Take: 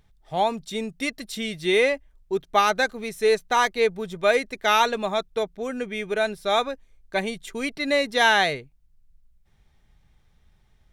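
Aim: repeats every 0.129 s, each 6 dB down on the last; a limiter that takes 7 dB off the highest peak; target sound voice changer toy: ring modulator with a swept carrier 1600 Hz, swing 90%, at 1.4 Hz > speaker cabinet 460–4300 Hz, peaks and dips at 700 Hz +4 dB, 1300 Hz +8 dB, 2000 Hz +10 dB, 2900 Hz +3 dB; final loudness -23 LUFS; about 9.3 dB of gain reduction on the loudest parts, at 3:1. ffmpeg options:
-af "acompressor=threshold=-28dB:ratio=3,alimiter=limit=-23dB:level=0:latency=1,aecho=1:1:129|258|387|516|645|774:0.501|0.251|0.125|0.0626|0.0313|0.0157,aeval=exprs='val(0)*sin(2*PI*1600*n/s+1600*0.9/1.4*sin(2*PI*1.4*n/s))':c=same,highpass=460,equalizer=f=700:t=q:w=4:g=4,equalizer=f=1.3k:t=q:w=4:g=8,equalizer=f=2k:t=q:w=4:g=10,equalizer=f=2.9k:t=q:w=4:g=3,lowpass=f=4.3k:w=0.5412,lowpass=f=4.3k:w=1.3066,volume=6.5dB"

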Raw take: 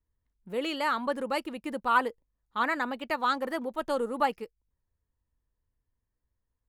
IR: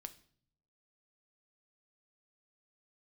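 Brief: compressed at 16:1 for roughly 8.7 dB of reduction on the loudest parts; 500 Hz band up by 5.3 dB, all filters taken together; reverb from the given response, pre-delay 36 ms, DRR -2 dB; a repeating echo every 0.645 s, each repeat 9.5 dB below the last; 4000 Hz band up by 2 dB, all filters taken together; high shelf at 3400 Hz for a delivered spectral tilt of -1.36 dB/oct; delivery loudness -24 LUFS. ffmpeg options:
-filter_complex "[0:a]equalizer=f=500:t=o:g=6,highshelf=f=3.4k:g=-6,equalizer=f=4k:t=o:g=6.5,acompressor=threshold=-27dB:ratio=16,aecho=1:1:645|1290|1935|2580:0.335|0.111|0.0365|0.012,asplit=2[a][b];[1:a]atrim=start_sample=2205,adelay=36[c];[b][c]afir=irnorm=-1:irlink=0,volume=7dB[d];[a][d]amix=inputs=2:normalize=0,volume=5.5dB"

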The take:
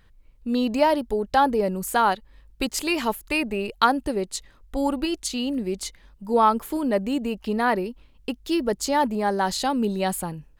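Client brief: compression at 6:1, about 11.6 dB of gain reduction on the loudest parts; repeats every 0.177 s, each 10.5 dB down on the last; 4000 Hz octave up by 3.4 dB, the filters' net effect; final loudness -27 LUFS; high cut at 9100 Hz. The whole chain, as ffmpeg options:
-af "lowpass=9.1k,equalizer=f=4k:t=o:g=4.5,acompressor=threshold=-26dB:ratio=6,aecho=1:1:177|354|531:0.299|0.0896|0.0269,volume=3.5dB"

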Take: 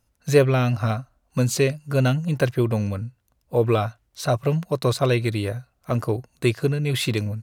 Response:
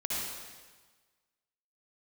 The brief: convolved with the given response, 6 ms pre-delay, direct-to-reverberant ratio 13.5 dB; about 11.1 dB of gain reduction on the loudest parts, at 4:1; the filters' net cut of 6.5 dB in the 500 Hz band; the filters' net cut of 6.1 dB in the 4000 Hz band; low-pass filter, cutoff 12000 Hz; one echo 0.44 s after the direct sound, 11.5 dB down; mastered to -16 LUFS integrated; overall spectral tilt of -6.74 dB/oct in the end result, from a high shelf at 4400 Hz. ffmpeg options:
-filter_complex "[0:a]lowpass=12k,equalizer=f=500:t=o:g=-8,equalizer=f=4k:t=o:g=-3,highshelf=f=4.4k:g=-8.5,acompressor=threshold=-30dB:ratio=4,aecho=1:1:440:0.266,asplit=2[a][b];[1:a]atrim=start_sample=2205,adelay=6[c];[b][c]afir=irnorm=-1:irlink=0,volume=-19.5dB[d];[a][d]amix=inputs=2:normalize=0,volume=17.5dB"

